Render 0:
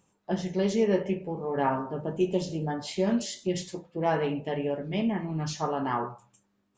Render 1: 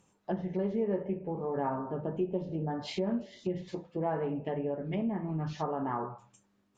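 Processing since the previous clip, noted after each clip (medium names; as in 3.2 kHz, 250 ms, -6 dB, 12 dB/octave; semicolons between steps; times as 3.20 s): low-pass that closes with the level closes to 1.3 kHz, closed at -26.5 dBFS; compression 2:1, threshold -34 dBFS, peak gain reduction 8.5 dB; trim +1 dB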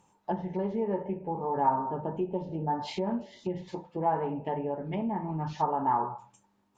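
peaking EQ 890 Hz +13.5 dB 0.32 oct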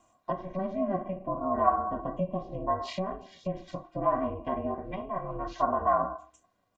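comb 2.3 ms, depth 88%; ring modulator 190 Hz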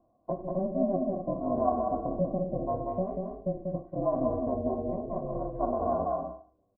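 four-pole ladder low-pass 750 Hz, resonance 25%; loudspeakers at several distances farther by 65 m -4 dB, 86 m -10 dB; trim +6.5 dB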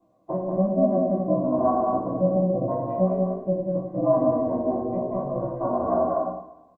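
doubling 16 ms -5 dB; reverberation RT60 1.0 s, pre-delay 3 ms, DRR -7 dB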